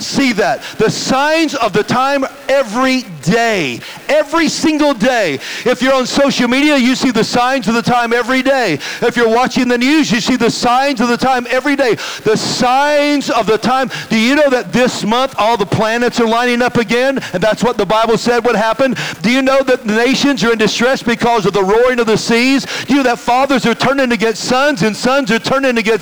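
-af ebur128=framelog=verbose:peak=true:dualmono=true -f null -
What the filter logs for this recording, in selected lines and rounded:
Integrated loudness:
  I:          -9.6 LUFS
  Threshold: -19.6 LUFS
Loudness range:
  LRA:         1.5 LU
  Threshold: -29.6 LUFS
  LRA low:   -10.5 LUFS
  LRA high:   -9.0 LUFS
True peak:
  Peak:       -6.2 dBFS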